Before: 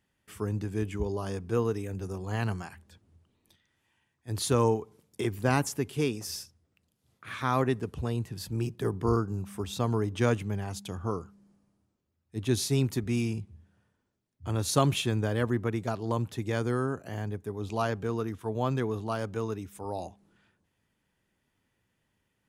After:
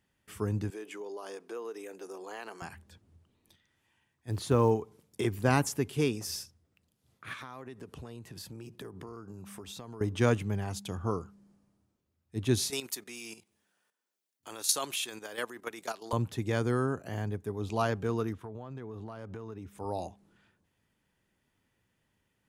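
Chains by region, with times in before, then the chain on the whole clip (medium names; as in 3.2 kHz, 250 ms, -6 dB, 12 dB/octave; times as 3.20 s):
0.70–2.62 s: high-pass 350 Hz 24 dB/octave + compression 3:1, threshold -39 dBFS
4.31–4.71 s: treble shelf 3.2 kHz -12 dB + companded quantiser 8-bit
7.33–10.01 s: high-pass 210 Hz 6 dB/octave + compression 10:1, threshold -40 dBFS
12.70–16.13 s: high-pass 330 Hz + tilt EQ +3 dB/octave + level held to a coarse grid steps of 11 dB
18.33–19.78 s: treble shelf 3.5 kHz -10.5 dB + compression 20:1, threshold -37 dBFS
whole clip: none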